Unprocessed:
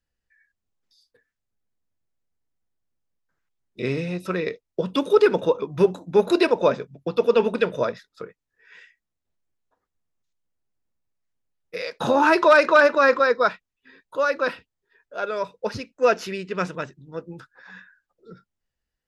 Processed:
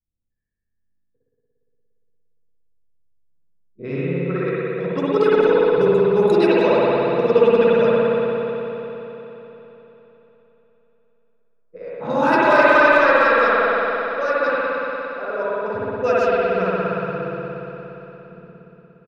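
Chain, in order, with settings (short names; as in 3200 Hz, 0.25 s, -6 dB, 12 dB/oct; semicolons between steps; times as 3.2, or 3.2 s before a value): speakerphone echo 0.17 s, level -7 dB; low-pass opened by the level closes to 300 Hz, open at -16 dBFS; spring tank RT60 3.8 s, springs 58 ms, chirp 55 ms, DRR -9 dB; gain -5.5 dB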